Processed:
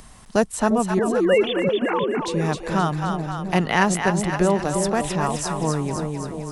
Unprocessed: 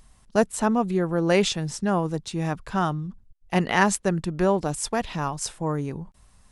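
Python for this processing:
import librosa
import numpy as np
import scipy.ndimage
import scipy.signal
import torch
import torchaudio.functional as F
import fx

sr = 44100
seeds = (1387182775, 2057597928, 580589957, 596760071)

p1 = fx.sine_speech(x, sr, at=(0.99, 2.21))
p2 = p1 + fx.echo_split(p1, sr, split_hz=640.0, low_ms=349, high_ms=261, feedback_pct=52, wet_db=-6, dry=0)
p3 = fx.band_squash(p2, sr, depth_pct=40)
y = p3 * 10.0 ** (2.0 / 20.0)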